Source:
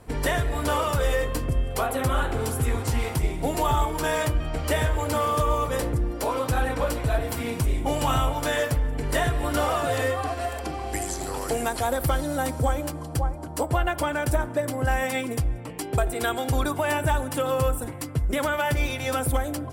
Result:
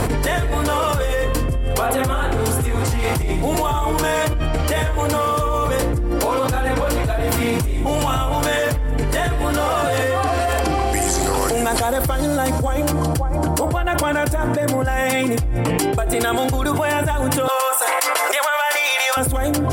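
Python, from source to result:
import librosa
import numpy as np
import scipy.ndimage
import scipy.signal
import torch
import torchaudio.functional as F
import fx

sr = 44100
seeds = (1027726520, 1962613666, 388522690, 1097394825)

y = fx.cheby2_highpass(x, sr, hz=150.0, order=4, stop_db=70, at=(17.48, 19.17))
y = fx.env_flatten(y, sr, amount_pct=100)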